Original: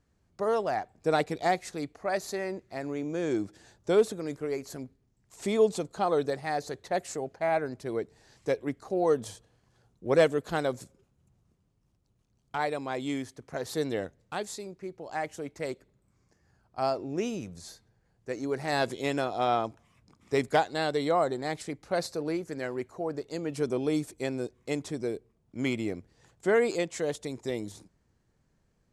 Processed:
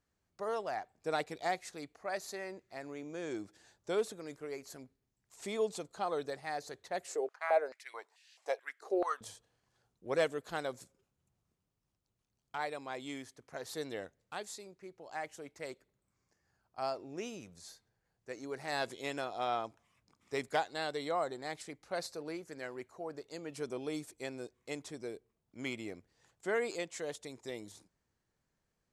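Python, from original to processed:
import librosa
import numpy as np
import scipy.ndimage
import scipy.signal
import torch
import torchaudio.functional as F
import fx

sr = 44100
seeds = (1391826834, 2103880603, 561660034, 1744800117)

y = fx.filter_held_highpass(x, sr, hz=4.6, low_hz=410.0, high_hz=2700.0, at=(7.07, 9.21))
y = fx.low_shelf(y, sr, hz=450.0, db=-9.0)
y = y * librosa.db_to_amplitude(-5.5)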